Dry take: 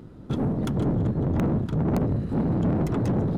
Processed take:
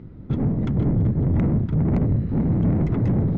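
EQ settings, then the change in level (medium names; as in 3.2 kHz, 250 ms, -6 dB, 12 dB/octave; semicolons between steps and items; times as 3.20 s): distance through air 150 m; bass shelf 260 Hz +11.5 dB; peaking EQ 2.1 kHz +8.5 dB 0.4 oct; -4.0 dB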